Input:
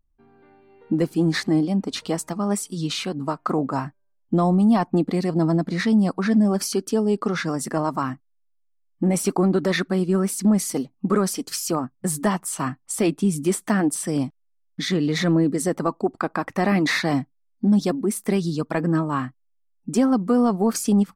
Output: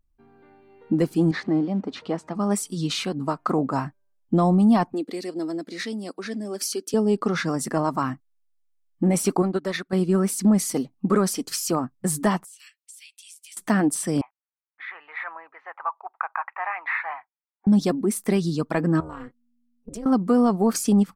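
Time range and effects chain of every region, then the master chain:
1.31–2.35 G.711 law mismatch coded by mu + HPF 220 Hz 6 dB/oct + tape spacing loss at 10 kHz 27 dB
4.93–6.94 HPF 310 Hz 24 dB/oct + bell 920 Hz -13.5 dB 1.8 oct
9.42–9.93 low shelf 370 Hz -5.5 dB + upward expander 2.5:1, over -31 dBFS
12.44–13.57 steep high-pass 2400 Hz + compressor 12:1, threshold -42 dBFS
14.21–17.67 elliptic band-pass 860–2500 Hz, stop band 60 dB + tilt shelf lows +5.5 dB, about 1400 Hz
19–20.06 comb 4.2 ms, depth 53% + compressor 5:1, threshold -30 dBFS + AM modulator 240 Hz, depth 90%
whole clip: dry

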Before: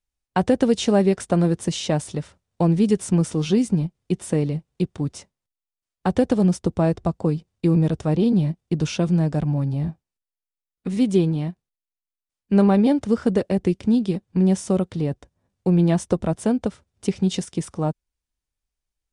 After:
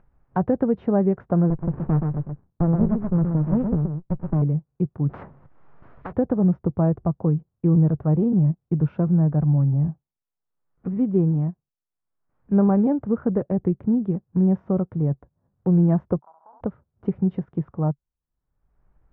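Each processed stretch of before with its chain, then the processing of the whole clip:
1.5–4.42 echo 0.125 s -5 dB + running maximum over 65 samples
5.09–6.13 power-law curve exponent 0.7 + spectral compressor 4:1
16.19–16.61 Butterworth band-pass 950 Hz, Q 3.3 + compressor 2:1, threshold -51 dBFS + flutter echo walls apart 11.7 m, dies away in 0.66 s
whole clip: LPF 1400 Hz 24 dB/oct; bell 140 Hz +8 dB 0.62 oct; upward compressor, threshold -33 dBFS; gain -3.5 dB

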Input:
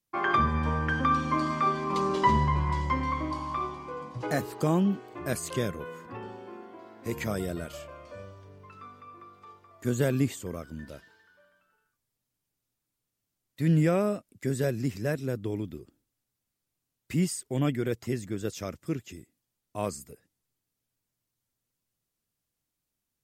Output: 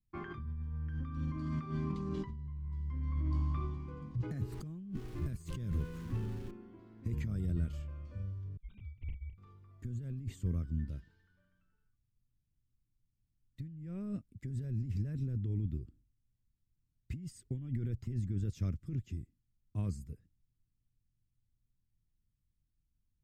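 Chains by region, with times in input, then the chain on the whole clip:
4.52–6.51 zero-crossing step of -38.5 dBFS + high shelf 7200 Hz +6 dB
8.57–9.38 sine-wave speech + HPF 990 Hz 24 dB/oct + ring modulator 1100 Hz
whole clip: passive tone stack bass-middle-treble 6-0-2; negative-ratio compressor -52 dBFS, ratio -1; tilt -4 dB/oct; gain +4 dB

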